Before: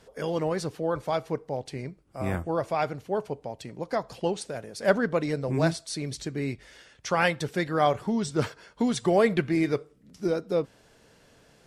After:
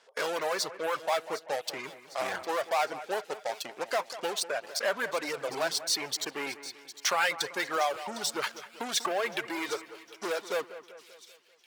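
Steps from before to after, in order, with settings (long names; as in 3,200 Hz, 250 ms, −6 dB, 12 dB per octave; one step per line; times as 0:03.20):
low-pass filter 7,000 Hz
in parallel at −9 dB: fuzz pedal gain 38 dB, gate −42 dBFS
on the sum: reverb reduction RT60 1.9 s
downward compressor, threshold −20 dBFS, peak gain reduction 7.5 dB
high-pass filter 730 Hz 12 dB per octave
on a send: echo with a time of its own for lows and highs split 2,600 Hz, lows 194 ms, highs 756 ms, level −14 dB
on the sum: level −1 dB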